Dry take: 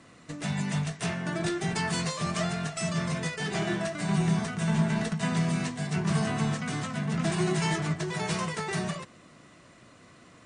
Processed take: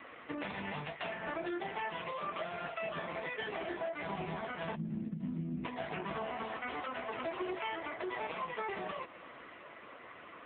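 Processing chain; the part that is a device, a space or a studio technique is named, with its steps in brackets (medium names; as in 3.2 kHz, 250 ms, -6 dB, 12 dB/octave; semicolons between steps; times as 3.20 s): 6.42–8.15 s: steep high-pass 230 Hz 72 dB/octave; dynamic bell 1.6 kHz, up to -4 dB, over -48 dBFS, Q 2.4; 4.76–5.65 s: time-frequency box 350–5200 Hz -26 dB; voicemail (band-pass 440–3100 Hz; compression 8:1, threshold -44 dBFS, peak gain reduction 15 dB; trim +10.5 dB; AMR-NB 5.9 kbps 8 kHz)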